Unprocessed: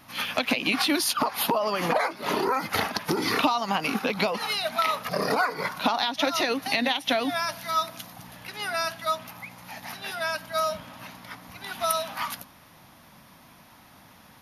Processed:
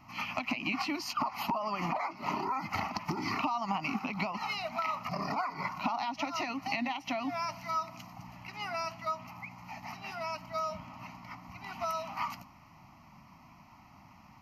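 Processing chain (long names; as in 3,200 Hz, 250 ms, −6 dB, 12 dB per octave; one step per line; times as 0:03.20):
high-shelf EQ 3,600 Hz −12 dB
downward compressor 3 to 1, threshold −27 dBFS, peak gain reduction 7.5 dB
phaser with its sweep stopped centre 2,400 Hz, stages 8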